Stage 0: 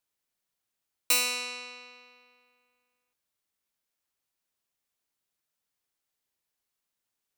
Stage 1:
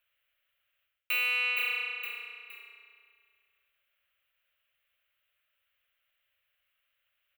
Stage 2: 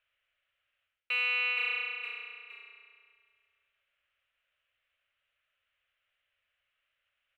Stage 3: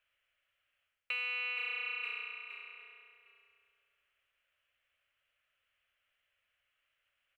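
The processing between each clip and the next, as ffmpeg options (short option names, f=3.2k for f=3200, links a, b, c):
-filter_complex "[0:a]firequalizer=gain_entry='entry(100,0);entry(160,-23);entry(330,-24);entry(560,3);entry(860,-11);entry(1300,5);entry(2000,7);entry(2900,10);entry(5200,-25);entry(15000,0)':delay=0.05:min_phase=1,asplit=4[a][b][c][d];[b]adelay=466,afreqshift=-30,volume=-16.5dB[e];[c]adelay=932,afreqshift=-60,volume=-25.6dB[f];[d]adelay=1398,afreqshift=-90,volume=-34.7dB[g];[a][e][f][g]amix=inputs=4:normalize=0,areverse,acompressor=threshold=-32dB:ratio=12,areverse,volume=6dB"
-af "lowpass=3.8k"
-filter_complex "[0:a]bandreject=f=3.7k:w=18,acompressor=threshold=-34dB:ratio=6,asplit=2[a][b];[b]adelay=758,volume=-11dB,highshelf=f=4k:g=-17.1[c];[a][c]amix=inputs=2:normalize=0"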